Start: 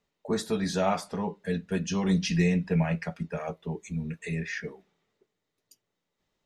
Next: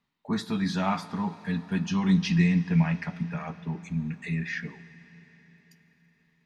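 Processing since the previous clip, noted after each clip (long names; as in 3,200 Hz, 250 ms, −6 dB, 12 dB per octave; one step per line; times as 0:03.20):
octave-band graphic EQ 125/250/500/1,000/2,000/4,000/8,000 Hz +8/+9/−10/+9/+5/+6/−5 dB
on a send at −14.5 dB: convolution reverb RT60 4.8 s, pre-delay 36 ms
on the sum: level −5.5 dB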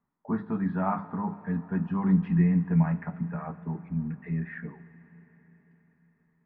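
low-pass filter 1,500 Hz 24 dB per octave
mains-hum notches 50/100/150/200 Hz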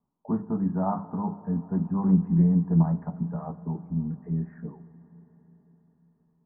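low-pass filter 1,000 Hz 24 dB per octave
highs frequency-modulated by the lows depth 0.15 ms
level +2 dB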